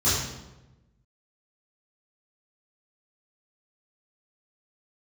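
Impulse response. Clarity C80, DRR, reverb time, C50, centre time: 3.5 dB, -13.5 dB, 1.0 s, 0.0 dB, 70 ms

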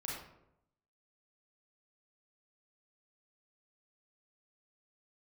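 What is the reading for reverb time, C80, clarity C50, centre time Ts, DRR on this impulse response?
0.80 s, 4.5 dB, 0.0 dB, 58 ms, -5.0 dB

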